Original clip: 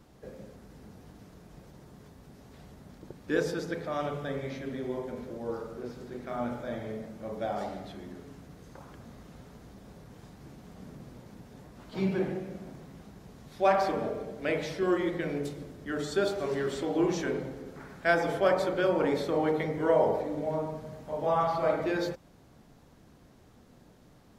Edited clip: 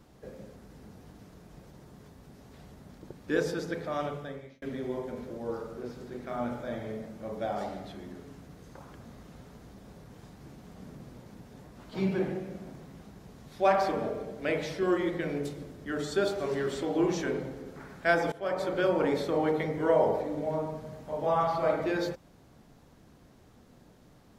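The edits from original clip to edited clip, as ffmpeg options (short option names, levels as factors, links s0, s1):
-filter_complex "[0:a]asplit=3[s0][s1][s2];[s0]atrim=end=4.62,asetpts=PTS-STARTPTS,afade=t=out:st=4:d=0.62[s3];[s1]atrim=start=4.62:end=18.32,asetpts=PTS-STARTPTS,afade=t=in:d=0.004:c=hsin,afade=t=out:st=13.696:d=0.004:c=hsin:silence=0.105925[s4];[s2]atrim=start=18.32,asetpts=PTS-STARTPTS,afade=t=in:d=0.45:silence=0.105925[s5];[s3][s4][s5]concat=n=3:v=0:a=1"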